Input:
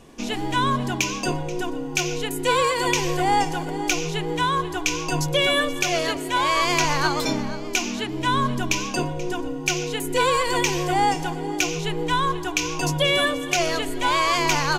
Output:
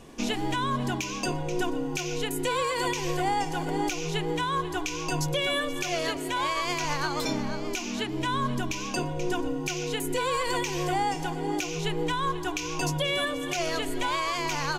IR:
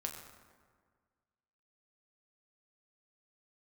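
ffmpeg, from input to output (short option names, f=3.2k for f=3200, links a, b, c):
-af "alimiter=limit=-18dB:level=0:latency=1:release=344"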